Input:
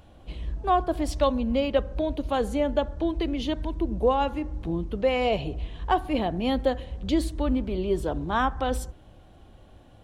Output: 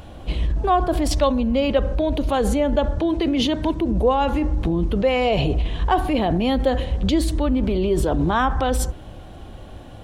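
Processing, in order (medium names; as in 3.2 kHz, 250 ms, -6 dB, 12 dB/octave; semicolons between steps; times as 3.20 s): 2.98–3.92 s: high-pass 93 Hz 12 dB/octave; in parallel at +0.5 dB: compressor with a negative ratio -31 dBFS, ratio -0.5; on the sum: trim +3.5 dB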